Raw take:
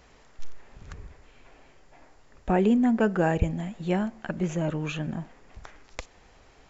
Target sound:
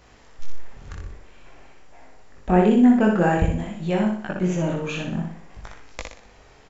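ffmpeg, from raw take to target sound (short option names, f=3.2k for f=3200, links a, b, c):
-af "flanger=delay=18.5:depth=5.6:speed=0.51,aecho=1:1:61|122|183|244|305:0.631|0.265|0.111|0.0467|0.0196,volume=6dB"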